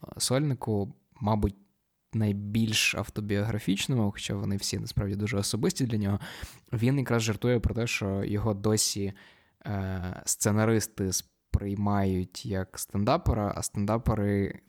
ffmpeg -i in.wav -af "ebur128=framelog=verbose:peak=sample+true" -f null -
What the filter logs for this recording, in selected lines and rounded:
Integrated loudness:
  I:         -28.8 LUFS
  Threshold: -39.1 LUFS
Loudness range:
  LRA:         1.2 LU
  Threshold: -49.1 LUFS
  LRA low:   -29.7 LUFS
  LRA high:  -28.5 LUFS
Sample peak:
  Peak:      -10.8 dBFS
True peak:
  Peak:      -10.8 dBFS